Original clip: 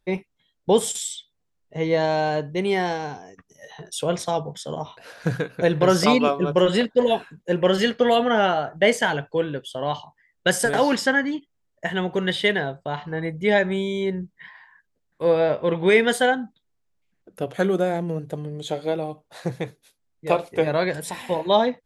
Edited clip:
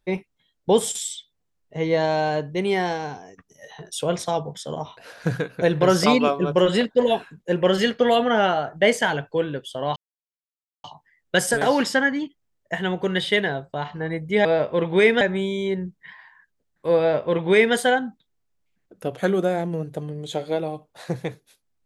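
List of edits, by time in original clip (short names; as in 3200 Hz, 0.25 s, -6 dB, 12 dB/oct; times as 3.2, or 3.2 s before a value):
9.96 insert silence 0.88 s
15.35–16.11 copy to 13.57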